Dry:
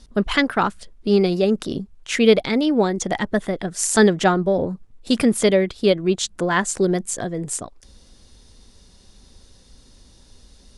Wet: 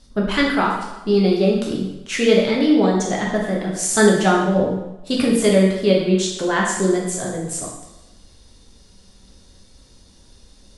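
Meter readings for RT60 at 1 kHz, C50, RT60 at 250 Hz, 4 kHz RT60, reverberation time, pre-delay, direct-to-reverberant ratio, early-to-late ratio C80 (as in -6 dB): 1.0 s, 2.5 dB, 0.90 s, 0.90 s, 1.0 s, 7 ms, -3.0 dB, 5.0 dB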